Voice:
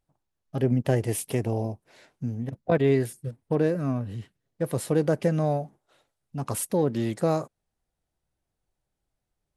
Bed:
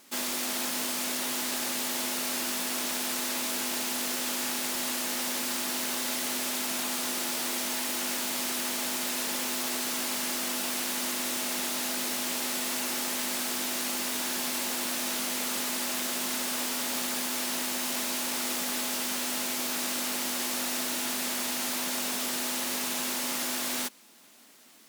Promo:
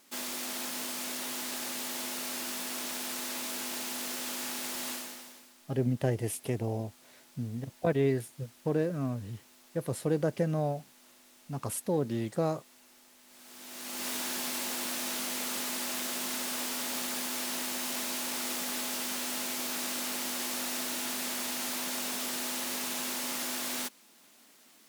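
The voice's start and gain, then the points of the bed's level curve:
5.15 s, -5.5 dB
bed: 4.92 s -5.5 dB
5.54 s -28 dB
13.23 s -28 dB
14.07 s -3.5 dB

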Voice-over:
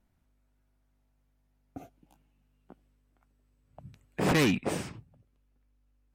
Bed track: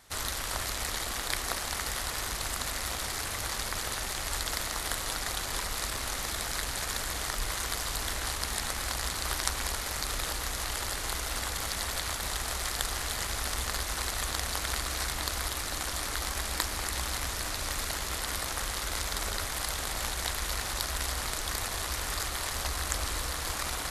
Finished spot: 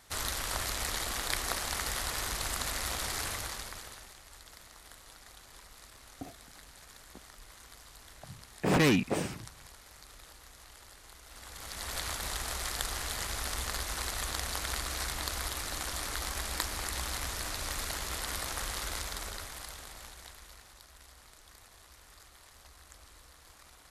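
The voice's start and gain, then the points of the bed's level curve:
4.45 s, 0.0 dB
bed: 3.28 s -1 dB
4.23 s -20 dB
11.22 s -20 dB
11.98 s -3 dB
18.85 s -3 dB
20.81 s -23 dB

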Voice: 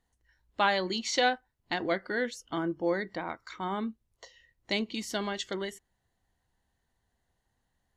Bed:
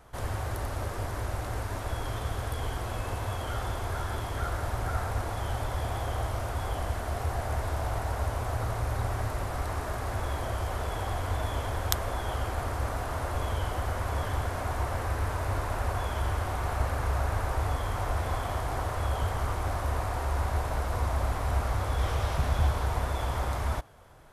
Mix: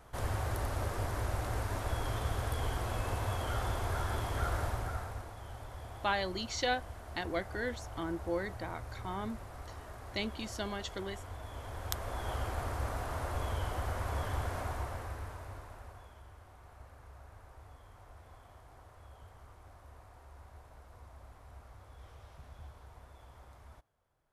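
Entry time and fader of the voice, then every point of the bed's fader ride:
5.45 s, -6.0 dB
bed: 4.61 s -2 dB
5.34 s -14.5 dB
11.43 s -14.5 dB
12.3 s -5 dB
14.59 s -5 dB
16.26 s -25 dB

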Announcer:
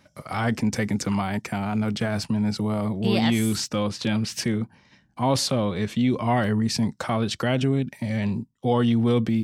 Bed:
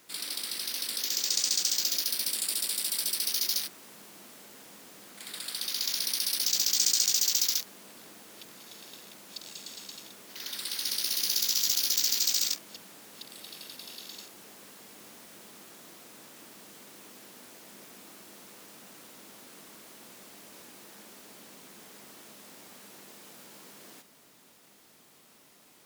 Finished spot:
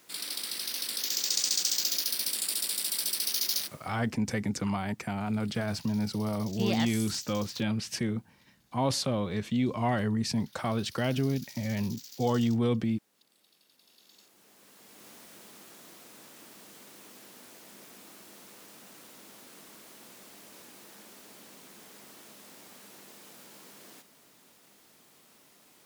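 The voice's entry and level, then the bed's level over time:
3.55 s, -6.0 dB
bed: 3.67 s -0.5 dB
4.15 s -21.5 dB
13.67 s -21.5 dB
15.09 s -1 dB

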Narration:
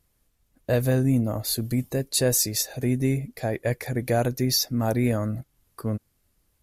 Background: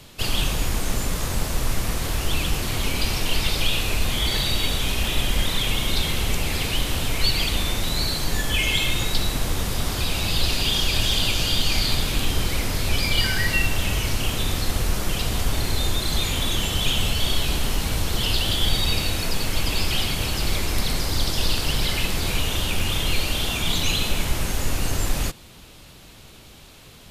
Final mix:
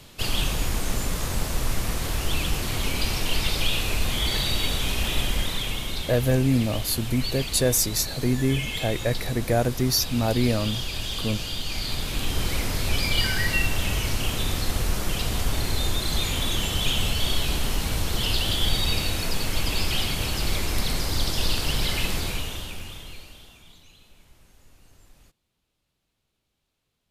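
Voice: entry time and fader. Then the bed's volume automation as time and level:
5.40 s, +0.5 dB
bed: 5.2 s -2 dB
6.13 s -9 dB
11.65 s -9 dB
12.49 s -2 dB
22.14 s -2 dB
23.89 s -31.5 dB

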